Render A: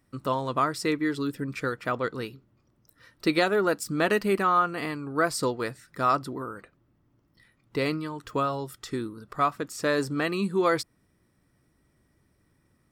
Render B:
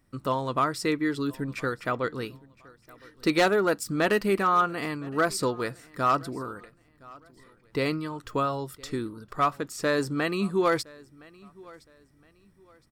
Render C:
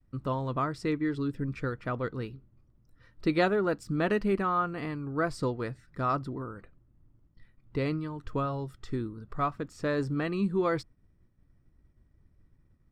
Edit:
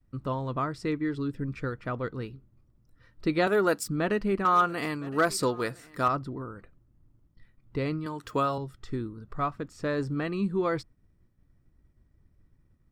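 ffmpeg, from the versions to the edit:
-filter_complex "[0:a]asplit=2[s0][s1];[2:a]asplit=4[s2][s3][s4][s5];[s2]atrim=end=3.472[s6];[s0]atrim=start=3.468:end=3.882[s7];[s3]atrim=start=3.878:end=4.452[s8];[1:a]atrim=start=4.448:end=6.082[s9];[s4]atrim=start=6.078:end=8.062[s10];[s1]atrim=start=8.058:end=8.582[s11];[s5]atrim=start=8.578[s12];[s6][s7]acrossfade=d=0.004:c1=hsin:c2=hsin[s13];[s13][s8]acrossfade=d=0.004:c1=hsin:c2=hsin[s14];[s14][s9]acrossfade=d=0.004:c1=hsin:c2=hsin[s15];[s15][s10]acrossfade=d=0.004:c1=hsin:c2=hsin[s16];[s16][s11]acrossfade=d=0.004:c1=hsin:c2=hsin[s17];[s17][s12]acrossfade=d=0.004:c1=hsin:c2=hsin"

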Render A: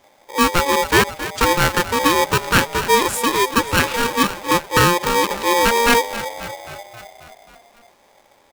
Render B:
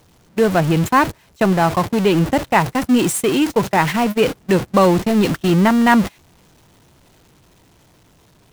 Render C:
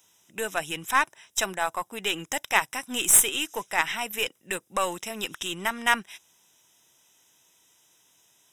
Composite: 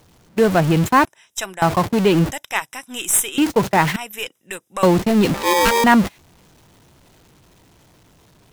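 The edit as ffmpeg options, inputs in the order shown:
-filter_complex "[2:a]asplit=3[s0][s1][s2];[1:a]asplit=5[s3][s4][s5][s6][s7];[s3]atrim=end=1.052[s8];[s0]atrim=start=1.048:end=1.622[s9];[s4]atrim=start=1.618:end=2.322[s10];[s1]atrim=start=2.318:end=3.382[s11];[s5]atrim=start=3.378:end=3.962[s12];[s2]atrim=start=3.958:end=4.832[s13];[s6]atrim=start=4.828:end=5.342[s14];[0:a]atrim=start=5.338:end=5.842[s15];[s7]atrim=start=5.838[s16];[s8][s9]acrossfade=d=0.004:c1=hsin:c2=hsin[s17];[s17][s10]acrossfade=d=0.004:c1=hsin:c2=hsin[s18];[s18][s11]acrossfade=d=0.004:c1=hsin:c2=hsin[s19];[s19][s12]acrossfade=d=0.004:c1=hsin:c2=hsin[s20];[s20][s13]acrossfade=d=0.004:c1=hsin:c2=hsin[s21];[s21][s14]acrossfade=d=0.004:c1=hsin:c2=hsin[s22];[s22][s15]acrossfade=d=0.004:c1=hsin:c2=hsin[s23];[s23][s16]acrossfade=d=0.004:c1=hsin:c2=hsin"

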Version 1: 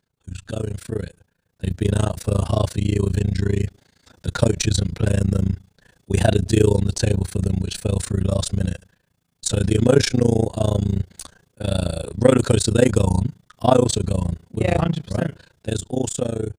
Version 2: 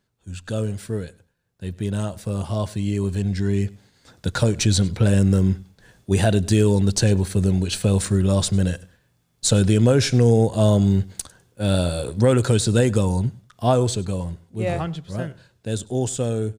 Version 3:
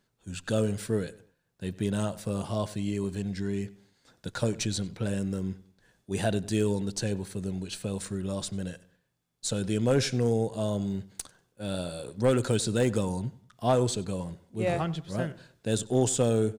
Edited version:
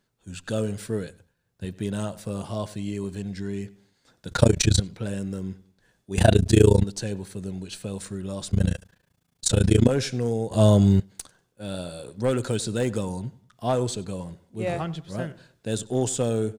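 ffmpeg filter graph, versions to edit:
-filter_complex "[1:a]asplit=2[s0][s1];[0:a]asplit=3[s2][s3][s4];[2:a]asplit=6[s5][s6][s7][s8][s9][s10];[s5]atrim=end=1.092[s11];[s0]atrim=start=1.088:end=1.652[s12];[s6]atrim=start=1.648:end=4.312[s13];[s2]atrim=start=4.308:end=4.802[s14];[s7]atrim=start=4.798:end=6.182[s15];[s3]atrim=start=6.178:end=6.842[s16];[s8]atrim=start=6.838:end=8.512[s17];[s4]atrim=start=8.508:end=9.892[s18];[s9]atrim=start=9.888:end=10.512[s19];[s1]atrim=start=10.508:end=11.002[s20];[s10]atrim=start=10.998[s21];[s11][s12]acrossfade=d=0.004:c1=hsin:c2=hsin[s22];[s22][s13]acrossfade=d=0.004:c1=hsin:c2=hsin[s23];[s23][s14]acrossfade=d=0.004:c1=hsin:c2=hsin[s24];[s24][s15]acrossfade=d=0.004:c1=hsin:c2=hsin[s25];[s25][s16]acrossfade=d=0.004:c1=hsin:c2=hsin[s26];[s26][s17]acrossfade=d=0.004:c1=hsin:c2=hsin[s27];[s27][s18]acrossfade=d=0.004:c1=hsin:c2=hsin[s28];[s28][s19]acrossfade=d=0.004:c1=hsin:c2=hsin[s29];[s29][s20]acrossfade=d=0.004:c1=hsin:c2=hsin[s30];[s30][s21]acrossfade=d=0.004:c1=hsin:c2=hsin"

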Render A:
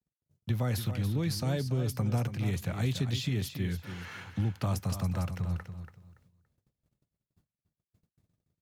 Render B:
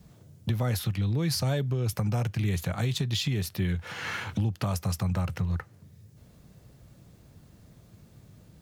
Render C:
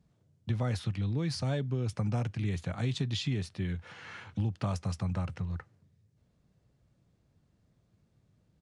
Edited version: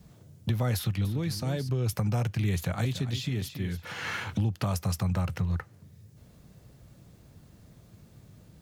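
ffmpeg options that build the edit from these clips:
-filter_complex "[0:a]asplit=2[s0][s1];[1:a]asplit=3[s2][s3][s4];[s2]atrim=end=1.052[s5];[s0]atrim=start=1.048:end=1.692[s6];[s3]atrim=start=1.688:end=2.852[s7];[s1]atrim=start=2.848:end=3.852[s8];[s4]atrim=start=3.848[s9];[s5][s6]acrossfade=d=0.004:c1=hsin:c2=hsin[s10];[s10][s7]acrossfade=d=0.004:c1=hsin:c2=hsin[s11];[s11][s8]acrossfade=d=0.004:c1=hsin:c2=hsin[s12];[s12][s9]acrossfade=d=0.004:c1=hsin:c2=hsin"

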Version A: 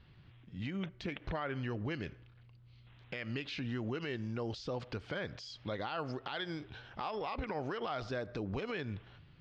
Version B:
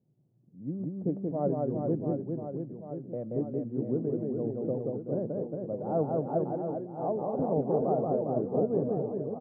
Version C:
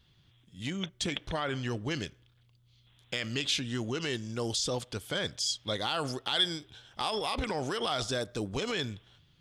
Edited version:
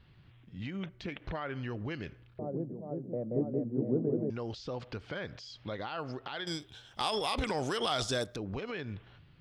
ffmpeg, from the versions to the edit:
-filter_complex "[0:a]asplit=3[s0][s1][s2];[s0]atrim=end=2.392[s3];[1:a]atrim=start=2.388:end=4.302[s4];[s1]atrim=start=4.298:end=6.472[s5];[2:a]atrim=start=6.468:end=8.362[s6];[s2]atrim=start=8.358[s7];[s3][s4]acrossfade=d=0.004:c1=hsin:c2=hsin[s8];[s8][s5]acrossfade=d=0.004:c1=hsin:c2=hsin[s9];[s9][s6]acrossfade=d=0.004:c1=hsin:c2=hsin[s10];[s10][s7]acrossfade=d=0.004:c1=hsin:c2=hsin"

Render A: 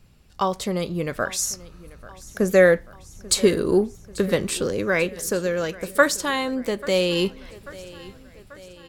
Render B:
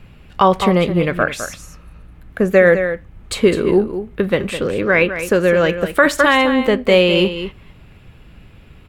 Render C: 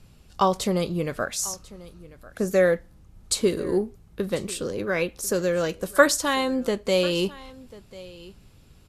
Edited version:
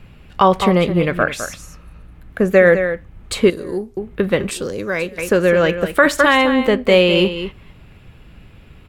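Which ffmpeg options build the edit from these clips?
-filter_complex "[1:a]asplit=3[s0][s1][s2];[s0]atrim=end=3.502[s3];[2:a]atrim=start=3.498:end=3.972[s4];[s1]atrim=start=3.968:end=4.512[s5];[0:a]atrim=start=4.508:end=5.182[s6];[s2]atrim=start=5.178[s7];[s3][s4]acrossfade=d=0.004:c1=hsin:c2=hsin[s8];[s8][s5]acrossfade=d=0.004:c1=hsin:c2=hsin[s9];[s9][s6]acrossfade=d=0.004:c1=hsin:c2=hsin[s10];[s10][s7]acrossfade=d=0.004:c1=hsin:c2=hsin"

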